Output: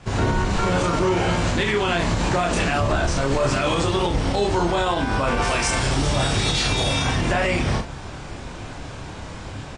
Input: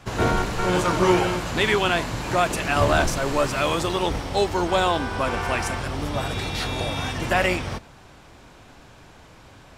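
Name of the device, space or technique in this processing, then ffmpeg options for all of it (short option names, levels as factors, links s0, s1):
low-bitrate web radio: -filter_complex "[0:a]asettb=1/sr,asplit=3[s0][s1][s2];[s0]atrim=end=5.424[s3];[s1]atrim=start=5.42:end=7.04,asetpts=PTS-STARTPTS,afade=t=in:d=0.004:c=qsin,afade=t=out:st=1.616:d=0.004:c=qsin,aemphasis=mode=production:type=75kf[s4];[s2]atrim=start=7.036[s5];[s3][s4]acrossfade=d=0.004:c1=hsin:c2=qsin[s6];[s6][s5]acrossfade=d=0.004:c1=qsin:c2=hsin,acrossover=split=8300[s7][s8];[s8]acompressor=threshold=0.00501:ratio=4:attack=1:release=60[s9];[s7][s9]amix=inputs=2:normalize=0,lowshelf=f=280:g=5.5,aecho=1:1:29.15|69.97:0.794|0.251,dynaudnorm=f=130:g=3:m=2.82,alimiter=limit=0.266:level=0:latency=1:release=91" -ar 22050 -c:a libmp3lame -b:a 40k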